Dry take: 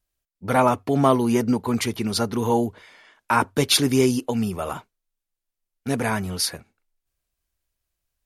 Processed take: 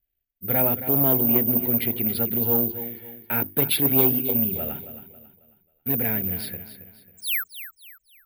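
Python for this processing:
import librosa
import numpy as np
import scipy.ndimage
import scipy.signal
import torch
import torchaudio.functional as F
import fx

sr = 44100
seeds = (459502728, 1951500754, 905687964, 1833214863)

p1 = fx.hum_notches(x, sr, base_hz=50, count=7)
p2 = fx.spec_paint(p1, sr, seeds[0], shape='fall', start_s=7.17, length_s=0.27, low_hz=1200.0, high_hz=8000.0, level_db=-24.0)
p3 = fx.air_absorb(p2, sr, metres=140.0)
p4 = fx.fixed_phaser(p3, sr, hz=2600.0, stages=4)
p5 = p4 + fx.echo_feedback(p4, sr, ms=272, feedback_pct=37, wet_db=-12.5, dry=0)
p6 = (np.kron(scipy.signal.resample_poly(p5, 1, 3), np.eye(3)[0]) * 3)[:len(p5)]
p7 = fx.transformer_sat(p6, sr, knee_hz=1500.0)
y = p7 * librosa.db_to_amplitude(-1.5)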